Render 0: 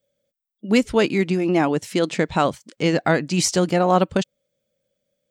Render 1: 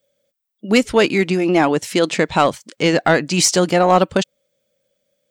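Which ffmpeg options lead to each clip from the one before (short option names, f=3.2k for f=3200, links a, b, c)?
-af "lowshelf=f=290:g=-7.5,acontrast=83"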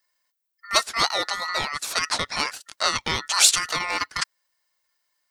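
-af "highshelf=f=1.8k:t=q:w=1.5:g=13,aeval=exprs='val(0)*sin(2*PI*1600*n/s)':c=same,volume=-11dB"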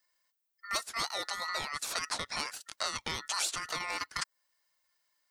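-filter_complex "[0:a]acrossover=split=1400|7200[a][b][c];[a]acompressor=threshold=-36dB:ratio=4[d];[b]acompressor=threshold=-34dB:ratio=4[e];[c]acompressor=threshold=-37dB:ratio=4[f];[d][e][f]amix=inputs=3:normalize=0,volume=-3dB"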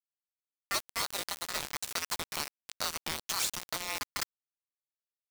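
-af "acrusher=bits=4:mix=0:aa=0.000001"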